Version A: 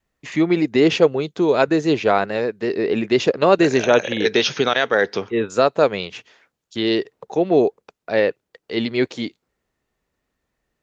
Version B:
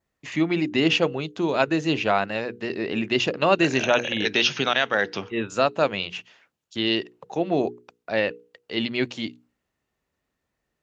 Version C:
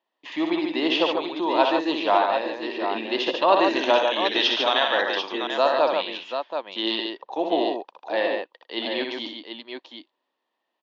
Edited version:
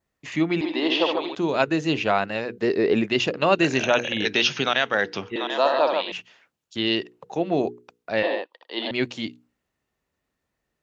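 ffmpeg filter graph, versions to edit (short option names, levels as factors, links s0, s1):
-filter_complex "[2:a]asplit=3[s0][s1][s2];[1:a]asplit=5[s3][s4][s5][s6][s7];[s3]atrim=end=0.612[s8];[s0]atrim=start=0.608:end=1.352[s9];[s4]atrim=start=1.348:end=2.582[s10];[0:a]atrim=start=2.578:end=3.102[s11];[s5]atrim=start=3.098:end=5.362[s12];[s1]atrim=start=5.358:end=6.122[s13];[s6]atrim=start=6.118:end=8.232[s14];[s2]atrim=start=8.228:end=8.912[s15];[s7]atrim=start=8.908[s16];[s8][s9]acrossfade=d=0.004:c1=hsin:c2=hsin[s17];[s17][s10]acrossfade=d=0.004:c1=hsin:c2=hsin[s18];[s18][s11]acrossfade=d=0.004:c1=hsin:c2=hsin[s19];[s19][s12]acrossfade=d=0.004:c1=hsin:c2=hsin[s20];[s20][s13]acrossfade=d=0.004:c1=hsin:c2=hsin[s21];[s21][s14]acrossfade=d=0.004:c1=hsin:c2=hsin[s22];[s22][s15]acrossfade=d=0.004:c1=hsin:c2=hsin[s23];[s23][s16]acrossfade=d=0.004:c1=hsin:c2=hsin"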